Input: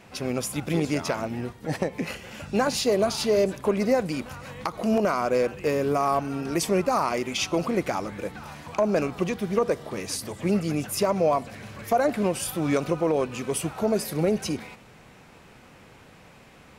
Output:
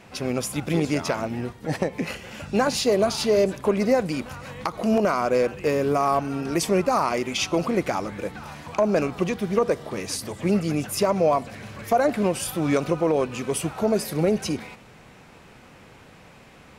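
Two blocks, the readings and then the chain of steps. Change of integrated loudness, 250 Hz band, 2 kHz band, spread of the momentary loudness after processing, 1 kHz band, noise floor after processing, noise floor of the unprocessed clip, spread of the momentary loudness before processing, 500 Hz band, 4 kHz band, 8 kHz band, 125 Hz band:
+2.0 dB, +2.0 dB, +2.0 dB, 10 LU, +2.0 dB, -49 dBFS, -51 dBFS, 10 LU, +2.0 dB, +1.5 dB, +1.0 dB, +2.0 dB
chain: treble shelf 12 kHz -4 dB; trim +2 dB

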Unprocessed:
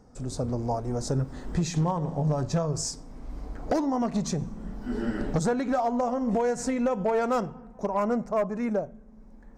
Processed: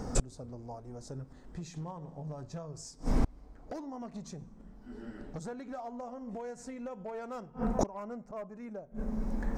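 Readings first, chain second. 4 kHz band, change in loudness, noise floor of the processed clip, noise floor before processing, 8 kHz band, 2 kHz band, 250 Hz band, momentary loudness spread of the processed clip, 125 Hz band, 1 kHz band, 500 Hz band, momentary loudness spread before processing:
-11.5 dB, -11.5 dB, -54 dBFS, -50 dBFS, -8.5 dB, -11.5 dB, -10.5 dB, 12 LU, -11.0 dB, -12.5 dB, -12.5 dB, 11 LU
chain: inverted gate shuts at -31 dBFS, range -32 dB; trim +16.5 dB

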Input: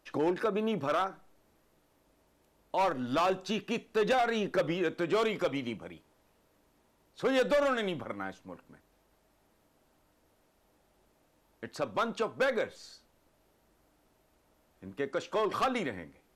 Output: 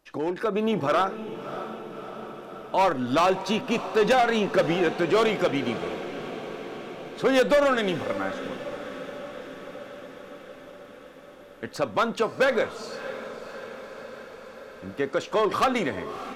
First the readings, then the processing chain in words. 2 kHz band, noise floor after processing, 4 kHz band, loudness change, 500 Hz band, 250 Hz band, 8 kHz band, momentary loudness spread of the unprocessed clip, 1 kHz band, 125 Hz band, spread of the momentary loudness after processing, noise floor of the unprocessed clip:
+7.5 dB, -46 dBFS, +7.5 dB, +6.0 dB, +7.0 dB, +7.0 dB, +8.0 dB, 14 LU, +7.5 dB, +7.5 dB, 19 LU, -70 dBFS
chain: tracing distortion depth 0.033 ms; echo that smears into a reverb 619 ms, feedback 70%, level -12.5 dB; level rider gain up to 7 dB

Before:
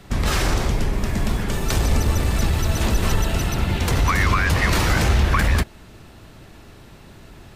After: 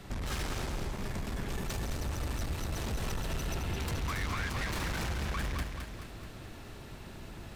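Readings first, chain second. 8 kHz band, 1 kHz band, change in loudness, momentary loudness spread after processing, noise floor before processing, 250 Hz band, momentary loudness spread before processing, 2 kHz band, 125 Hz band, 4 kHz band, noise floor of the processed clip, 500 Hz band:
-14.0 dB, -15.0 dB, -15.5 dB, 13 LU, -45 dBFS, -14.5 dB, 6 LU, -15.0 dB, -15.5 dB, -13.5 dB, -47 dBFS, -14.0 dB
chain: saturation -23.5 dBFS, distortion -8 dB; compression, threshold -31 dBFS, peak gain reduction 6 dB; bit-crushed delay 215 ms, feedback 55%, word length 11-bit, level -6 dB; trim -3.5 dB

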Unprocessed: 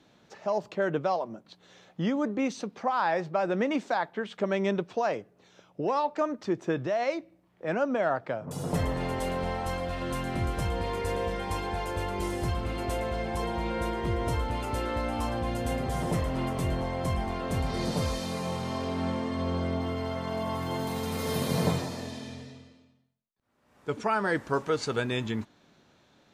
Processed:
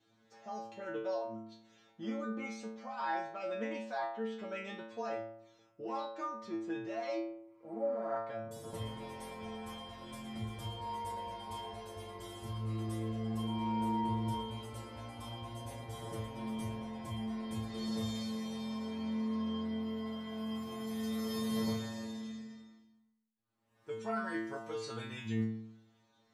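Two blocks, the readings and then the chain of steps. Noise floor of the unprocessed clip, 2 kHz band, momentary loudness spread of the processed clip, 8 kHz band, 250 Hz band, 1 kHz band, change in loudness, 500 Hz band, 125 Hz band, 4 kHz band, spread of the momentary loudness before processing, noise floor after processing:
-64 dBFS, -11.5 dB, 11 LU, -10.0 dB, -6.0 dB, -9.5 dB, -9.0 dB, -11.0 dB, -10.0 dB, -7.0 dB, 6 LU, -71 dBFS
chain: inharmonic resonator 110 Hz, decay 0.82 s, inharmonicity 0.002; spectral replace 7.49–8.13 s, 940–8200 Hz both; trim +4.5 dB

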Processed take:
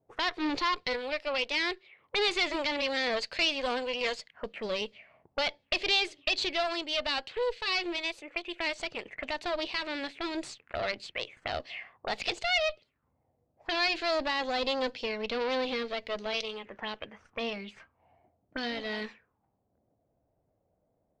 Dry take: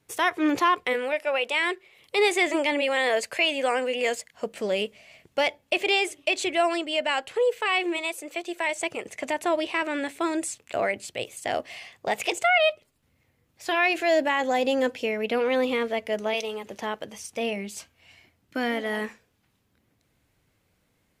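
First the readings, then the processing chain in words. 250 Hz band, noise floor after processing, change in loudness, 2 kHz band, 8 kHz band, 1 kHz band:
-8.0 dB, -77 dBFS, -5.5 dB, -6.0 dB, -10.5 dB, -7.5 dB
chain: valve stage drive 22 dB, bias 0.8; touch-sensitive low-pass 650–4400 Hz up, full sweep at -32.5 dBFS; trim -2.5 dB

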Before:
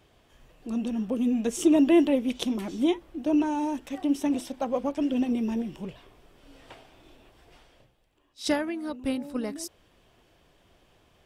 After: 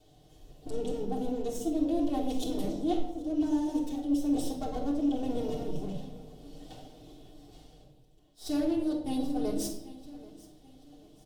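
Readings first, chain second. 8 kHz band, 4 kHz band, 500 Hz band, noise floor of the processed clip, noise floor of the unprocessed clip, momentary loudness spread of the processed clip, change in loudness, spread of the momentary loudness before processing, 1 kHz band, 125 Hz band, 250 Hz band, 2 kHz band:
-4.5 dB, -6.5 dB, -5.0 dB, -59 dBFS, -63 dBFS, 20 LU, -5.0 dB, 13 LU, -4.0 dB, +1.5 dB, -4.5 dB, under -10 dB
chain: comb filter that takes the minimum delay 6.6 ms; high-order bell 1.6 kHz -13.5 dB; feedback delay 785 ms, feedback 37%, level -22 dB; reverse; compression 6:1, threshold -32 dBFS, peak gain reduction 14.5 dB; reverse; simulated room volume 2300 m³, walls furnished, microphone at 3.4 m

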